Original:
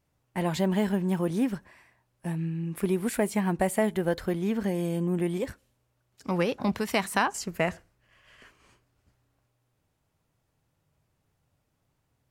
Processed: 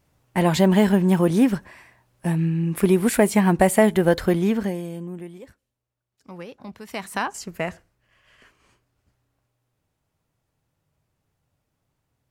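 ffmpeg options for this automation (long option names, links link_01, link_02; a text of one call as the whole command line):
ffmpeg -i in.wav -af "volume=20dB,afade=type=out:start_time=4.37:duration=0.45:silence=0.266073,afade=type=out:start_time=4.82:duration=0.52:silence=0.354813,afade=type=in:start_time=6.79:duration=0.44:silence=0.281838" out.wav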